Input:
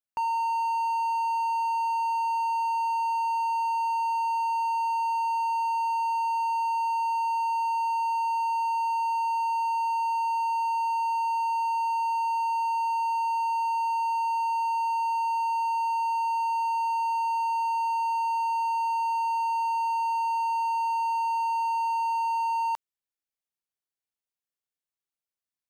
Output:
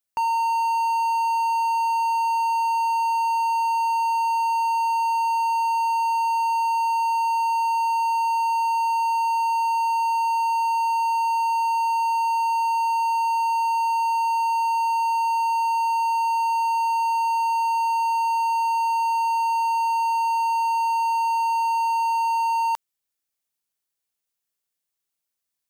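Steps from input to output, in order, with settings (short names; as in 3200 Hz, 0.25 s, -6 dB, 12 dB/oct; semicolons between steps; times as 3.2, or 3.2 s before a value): high shelf 4500 Hz +7 dB; gain +4.5 dB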